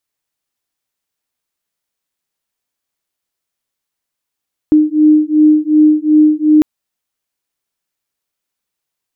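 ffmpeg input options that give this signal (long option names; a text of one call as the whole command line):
ffmpeg -f lavfi -i "aevalsrc='0.335*(sin(2*PI*304*t)+sin(2*PI*306.7*t))':duration=1.9:sample_rate=44100" out.wav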